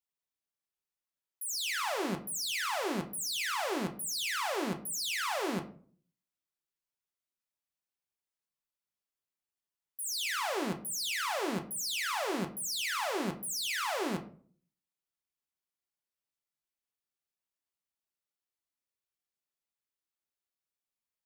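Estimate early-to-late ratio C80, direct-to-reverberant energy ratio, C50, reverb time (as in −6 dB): 17.0 dB, 3.5 dB, 12.5 dB, 0.50 s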